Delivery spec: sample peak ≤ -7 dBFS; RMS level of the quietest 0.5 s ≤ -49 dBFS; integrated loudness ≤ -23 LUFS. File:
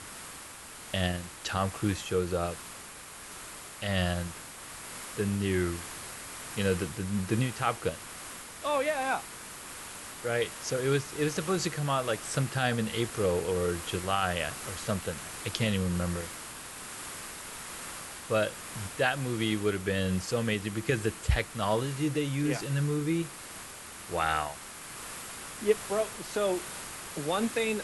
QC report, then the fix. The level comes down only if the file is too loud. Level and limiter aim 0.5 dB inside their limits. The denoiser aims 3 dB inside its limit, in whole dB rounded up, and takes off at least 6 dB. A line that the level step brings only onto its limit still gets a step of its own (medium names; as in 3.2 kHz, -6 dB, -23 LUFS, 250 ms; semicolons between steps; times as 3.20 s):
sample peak -12.0 dBFS: pass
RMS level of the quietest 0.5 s -46 dBFS: fail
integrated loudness -31.5 LUFS: pass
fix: noise reduction 6 dB, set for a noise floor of -46 dBFS